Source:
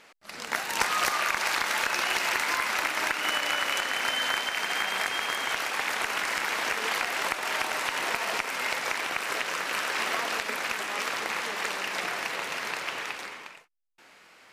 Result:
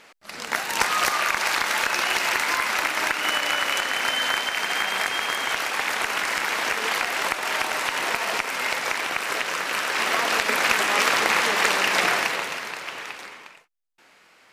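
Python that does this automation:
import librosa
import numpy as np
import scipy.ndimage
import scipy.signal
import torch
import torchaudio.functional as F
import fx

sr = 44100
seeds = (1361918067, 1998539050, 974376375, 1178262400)

y = fx.gain(x, sr, db=fx.line((9.86, 4.0), (10.71, 10.5), (12.13, 10.5), (12.7, -0.5)))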